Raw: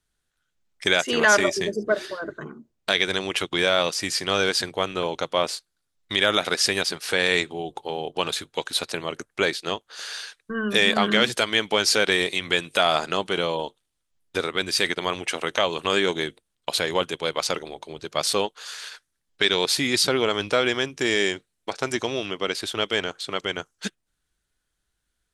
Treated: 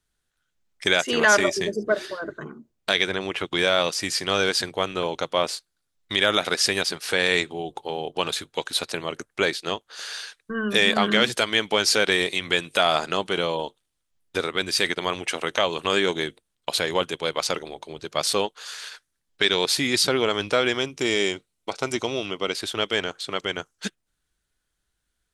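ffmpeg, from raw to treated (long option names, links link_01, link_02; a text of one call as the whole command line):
ffmpeg -i in.wav -filter_complex "[0:a]asettb=1/sr,asplit=3[link_01][link_02][link_03];[link_01]atrim=end=3.064[link_04];[link_02]atrim=start=3.06:end=3.48,asetpts=PTS-STARTPTS,afade=type=in:duration=0.004:curve=qsin,afade=type=out:start_time=0.416:duration=0.004:curve=qsin,acrossover=split=2700[link_05][link_06];[link_06]acompressor=threshold=-39dB:ratio=4:attack=1:release=60[link_07];[link_05][link_07]amix=inputs=2:normalize=0[link_08];[link_03]atrim=start=3.476[link_09];[link_04][link_08]acrossfade=duration=0.004:curve1=hsin:curve2=qsin[link_10];[link_10][link_09]acrossfade=duration=0.004:curve1=qsin:curve2=hsin,asettb=1/sr,asplit=3[link_11][link_12][link_13];[link_11]atrim=end=20.784[link_14];[link_12]atrim=start=20.78:end=22.54,asetpts=PTS-STARTPTS,afade=type=in:duration=0.004:curve=qsin,afade=type=out:start_time=1.756:duration=0.004:curve=qsin,bandreject=frequency=1700:width=6[link_15];[link_13]atrim=start=22.536[link_16];[link_14][link_15]acrossfade=duration=0.004:curve1=hsin:curve2=qsin[link_17];[link_17][link_16]acrossfade=duration=0.004:curve1=qsin:curve2=hsin" out.wav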